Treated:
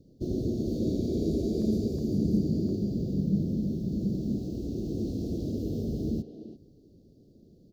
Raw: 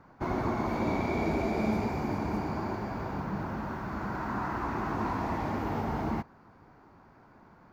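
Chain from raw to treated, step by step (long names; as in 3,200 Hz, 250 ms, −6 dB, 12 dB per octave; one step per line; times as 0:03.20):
inverse Chebyshev band-stop filter 870–2,200 Hz, stop band 50 dB
0:02.14–0:04.36: dynamic equaliser 180 Hz, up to +8 dB, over −48 dBFS, Q 1.4
far-end echo of a speakerphone 340 ms, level −8 dB
level +2.5 dB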